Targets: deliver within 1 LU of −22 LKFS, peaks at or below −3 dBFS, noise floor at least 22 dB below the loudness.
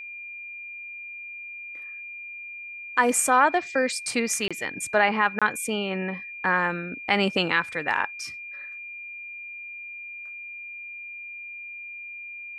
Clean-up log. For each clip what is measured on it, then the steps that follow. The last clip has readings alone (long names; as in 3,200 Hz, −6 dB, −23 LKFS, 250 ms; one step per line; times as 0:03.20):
number of dropouts 2; longest dropout 26 ms; interfering tone 2,400 Hz; level of the tone −36 dBFS; integrated loudness −27.0 LKFS; sample peak −6.5 dBFS; target loudness −22.0 LKFS
→ repair the gap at 0:04.48/0:05.39, 26 ms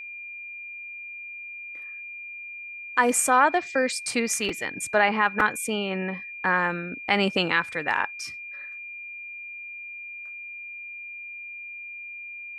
number of dropouts 0; interfering tone 2,400 Hz; level of the tone −36 dBFS
→ notch filter 2,400 Hz, Q 30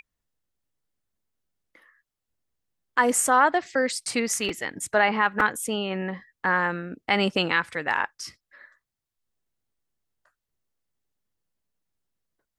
interfering tone none found; integrated loudness −24.5 LKFS; sample peak −7.0 dBFS; target loudness −22.0 LKFS
→ level +2.5 dB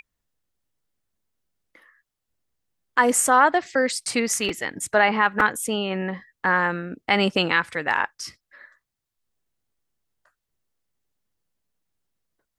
integrated loudness −22.0 LKFS; sample peak −4.5 dBFS; background noise floor −83 dBFS